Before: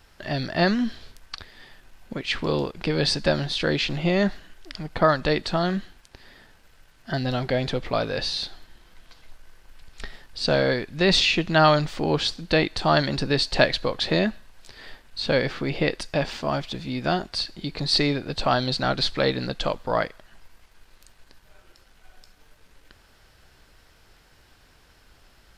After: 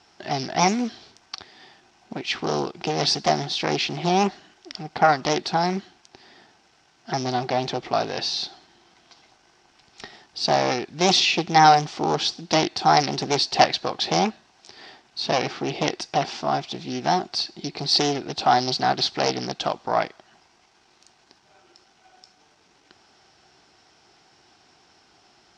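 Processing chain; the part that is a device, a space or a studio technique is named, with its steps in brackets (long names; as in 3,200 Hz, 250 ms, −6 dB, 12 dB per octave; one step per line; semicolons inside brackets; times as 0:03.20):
full-range speaker at full volume (highs frequency-modulated by the lows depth 0.85 ms; loudspeaker in its box 160–7,500 Hz, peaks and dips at 360 Hz +6 dB, 530 Hz −7 dB, 760 Hz +9 dB, 1,700 Hz −4 dB, 5,600 Hz +8 dB)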